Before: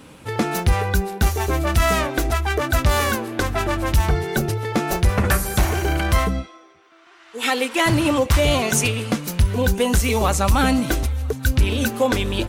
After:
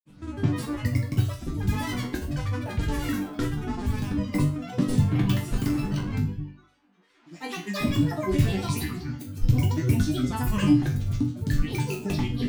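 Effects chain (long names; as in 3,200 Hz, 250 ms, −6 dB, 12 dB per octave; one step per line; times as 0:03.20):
reverb reduction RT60 0.53 s
granular cloud, pitch spread up and down by 12 semitones
low shelf with overshoot 370 Hz +9.5 dB, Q 1.5
resonators tuned to a chord G2 major, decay 0.38 s
hum removal 46.28 Hz, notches 2
level +3.5 dB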